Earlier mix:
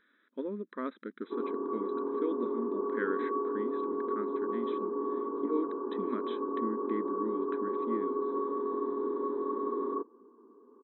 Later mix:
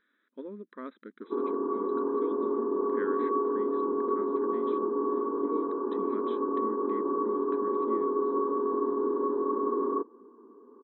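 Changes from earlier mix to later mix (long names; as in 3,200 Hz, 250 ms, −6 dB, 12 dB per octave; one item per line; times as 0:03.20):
speech −4.5 dB
background +4.5 dB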